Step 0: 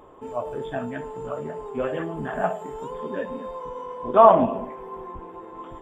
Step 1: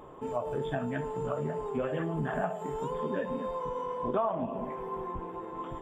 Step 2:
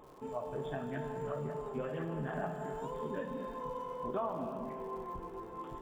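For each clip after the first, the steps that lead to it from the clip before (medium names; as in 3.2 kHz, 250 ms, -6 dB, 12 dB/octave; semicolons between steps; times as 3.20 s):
peaking EQ 150 Hz +7 dB 0.55 oct; compression 6:1, threshold -28 dBFS, peak gain reduction 19 dB
crackle 120 per s -45 dBFS; gated-style reverb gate 420 ms flat, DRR 6 dB; trim -7 dB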